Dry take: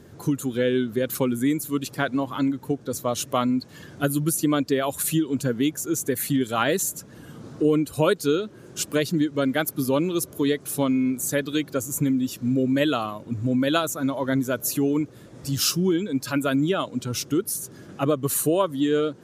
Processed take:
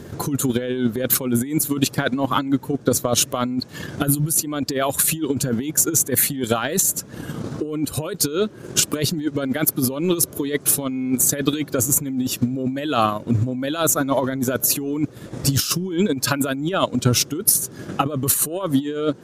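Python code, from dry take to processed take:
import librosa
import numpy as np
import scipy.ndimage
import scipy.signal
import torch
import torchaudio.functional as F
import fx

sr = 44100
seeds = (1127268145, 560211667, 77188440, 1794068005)

y = fx.over_compress(x, sr, threshold_db=-28.0, ratio=-1.0)
y = fx.transient(y, sr, attack_db=6, sustain_db=-6)
y = y * librosa.db_to_amplitude(6.0)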